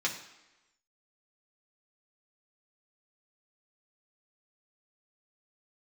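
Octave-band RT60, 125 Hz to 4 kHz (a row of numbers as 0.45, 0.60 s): 0.80, 0.95, 1.0, 1.1, 1.0, 0.95 s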